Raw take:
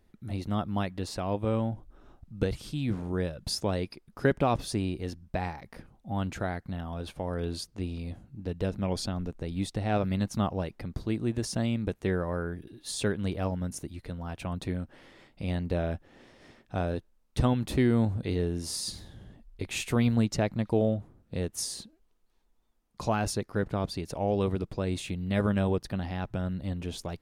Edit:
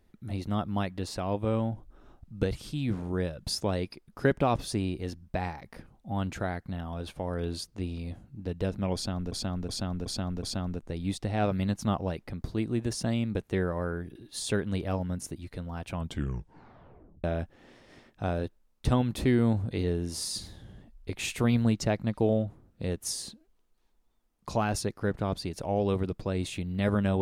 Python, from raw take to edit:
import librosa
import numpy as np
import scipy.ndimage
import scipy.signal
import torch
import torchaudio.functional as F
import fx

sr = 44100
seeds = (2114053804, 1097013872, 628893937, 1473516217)

y = fx.edit(x, sr, fx.repeat(start_s=8.95, length_s=0.37, count=5),
    fx.tape_stop(start_s=14.46, length_s=1.3), tone=tone)